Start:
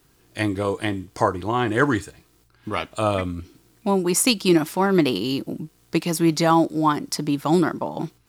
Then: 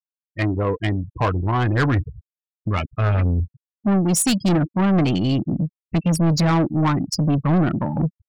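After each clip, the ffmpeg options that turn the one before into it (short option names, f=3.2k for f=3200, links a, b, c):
-af "asubboost=boost=7.5:cutoff=160,afftfilt=real='re*gte(hypot(re,im),0.0708)':imag='im*gte(hypot(re,im),0.0708)':win_size=1024:overlap=0.75,asoftclip=type=tanh:threshold=-19dB,volume=4.5dB"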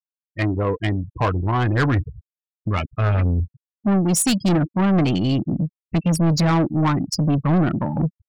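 -af anull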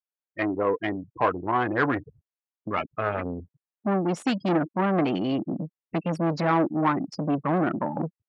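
-af "highpass=310,lowpass=2.1k"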